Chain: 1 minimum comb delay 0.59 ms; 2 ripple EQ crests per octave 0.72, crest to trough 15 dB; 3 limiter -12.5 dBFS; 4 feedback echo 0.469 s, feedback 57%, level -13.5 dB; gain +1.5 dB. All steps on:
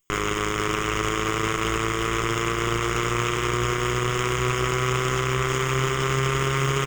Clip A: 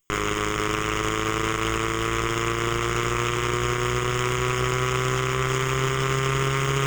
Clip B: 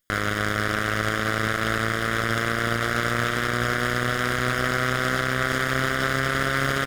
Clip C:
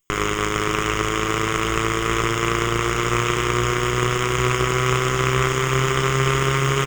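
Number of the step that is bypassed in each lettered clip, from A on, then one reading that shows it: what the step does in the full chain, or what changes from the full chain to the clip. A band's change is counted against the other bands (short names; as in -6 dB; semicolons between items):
4, echo-to-direct -12.0 dB to none; 2, 2 kHz band +6.0 dB; 3, mean gain reduction 3.0 dB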